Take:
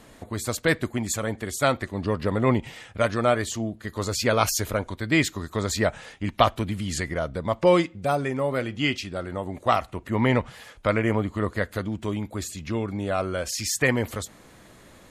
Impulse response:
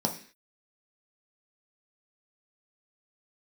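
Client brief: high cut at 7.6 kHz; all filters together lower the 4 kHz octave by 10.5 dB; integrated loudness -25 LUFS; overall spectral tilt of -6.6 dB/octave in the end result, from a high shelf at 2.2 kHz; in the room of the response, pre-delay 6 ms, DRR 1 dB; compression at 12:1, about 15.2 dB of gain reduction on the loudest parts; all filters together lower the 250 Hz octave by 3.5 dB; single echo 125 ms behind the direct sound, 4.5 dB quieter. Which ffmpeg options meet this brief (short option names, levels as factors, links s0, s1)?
-filter_complex "[0:a]lowpass=7600,equalizer=f=250:t=o:g=-4.5,highshelf=f=2200:g=-8,equalizer=f=4000:t=o:g=-6,acompressor=threshold=0.0316:ratio=12,aecho=1:1:125:0.596,asplit=2[s0][s1];[1:a]atrim=start_sample=2205,adelay=6[s2];[s1][s2]afir=irnorm=-1:irlink=0,volume=0.376[s3];[s0][s3]amix=inputs=2:normalize=0,volume=1.5"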